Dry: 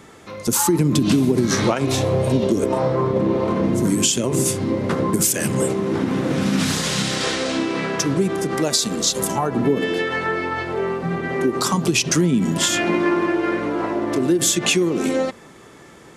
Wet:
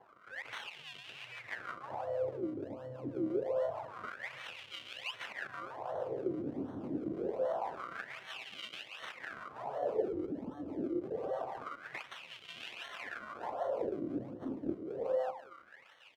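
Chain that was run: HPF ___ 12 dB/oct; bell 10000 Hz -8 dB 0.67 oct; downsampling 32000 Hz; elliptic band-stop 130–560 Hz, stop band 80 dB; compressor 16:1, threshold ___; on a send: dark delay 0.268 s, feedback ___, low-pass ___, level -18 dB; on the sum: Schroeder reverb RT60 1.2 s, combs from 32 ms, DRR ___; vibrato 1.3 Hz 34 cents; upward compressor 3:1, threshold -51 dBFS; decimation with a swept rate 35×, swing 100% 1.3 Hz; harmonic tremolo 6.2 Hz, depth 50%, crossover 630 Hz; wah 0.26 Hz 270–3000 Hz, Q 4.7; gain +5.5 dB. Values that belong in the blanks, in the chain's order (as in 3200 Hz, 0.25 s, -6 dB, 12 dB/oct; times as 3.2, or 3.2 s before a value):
50 Hz, -28 dBFS, 81%, 540 Hz, 7 dB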